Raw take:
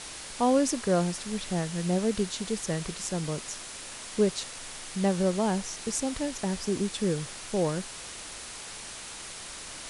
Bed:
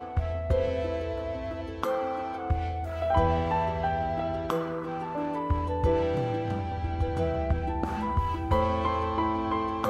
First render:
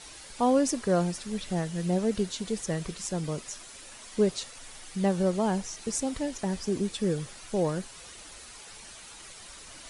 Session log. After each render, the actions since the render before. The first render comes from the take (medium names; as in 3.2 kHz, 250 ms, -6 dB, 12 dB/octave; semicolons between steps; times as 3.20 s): noise reduction 9 dB, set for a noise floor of -42 dBFS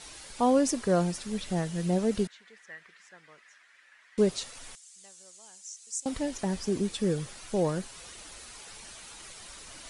2.27–4.18 s: band-pass filter 1.8 kHz, Q 4.3; 4.75–6.06 s: band-pass filter 7.3 kHz, Q 2.8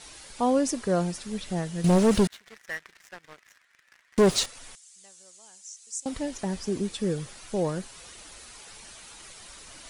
1.84–4.46 s: waveshaping leveller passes 3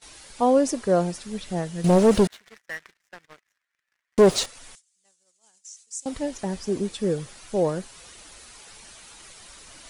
gate -49 dBFS, range -18 dB; dynamic bell 550 Hz, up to +6 dB, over -34 dBFS, Q 0.78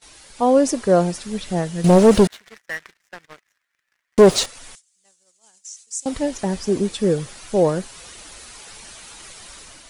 level rider gain up to 6 dB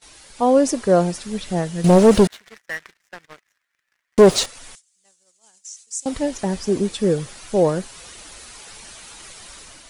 no audible change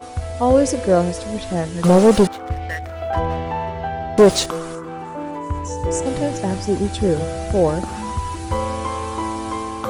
add bed +2.5 dB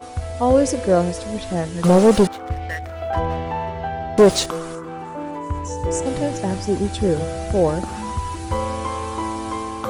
trim -1 dB